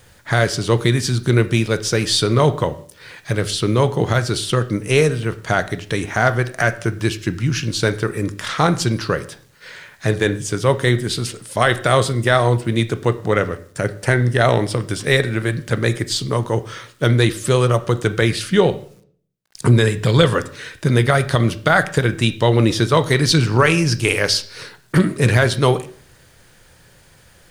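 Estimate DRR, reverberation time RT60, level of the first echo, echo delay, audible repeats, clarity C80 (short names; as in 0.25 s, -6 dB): 11.5 dB, 0.55 s, none, none, none, 19.5 dB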